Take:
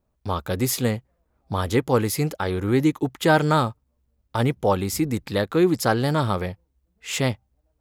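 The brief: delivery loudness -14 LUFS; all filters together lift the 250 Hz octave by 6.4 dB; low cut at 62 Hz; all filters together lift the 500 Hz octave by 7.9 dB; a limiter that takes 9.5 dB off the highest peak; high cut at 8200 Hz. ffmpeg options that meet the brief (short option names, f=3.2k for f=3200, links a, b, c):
-af "highpass=62,lowpass=8.2k,equalizer=f=250:t=o:g=5.5,equalizer=f=500:t=o:g=8,volume=6.5dB,alimiter=limit=-2dB:level=0:latency=1"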